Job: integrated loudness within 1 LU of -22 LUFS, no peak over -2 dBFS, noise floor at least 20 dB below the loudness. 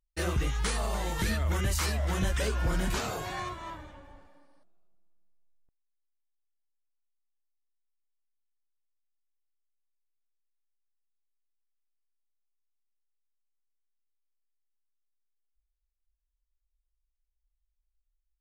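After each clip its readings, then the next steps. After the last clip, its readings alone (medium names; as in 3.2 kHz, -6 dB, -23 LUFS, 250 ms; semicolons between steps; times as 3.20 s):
loudness -31.0 LUFS; peak level -20.0 dBFS; loudness target -22.0 LUFS
-> trim +9 dB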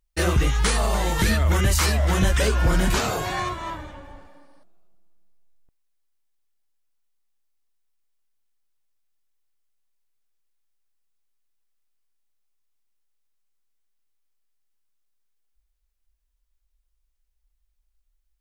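loudness -22.0 LUFS; peak level -11.0 dBFS; noise floor -73 dBFS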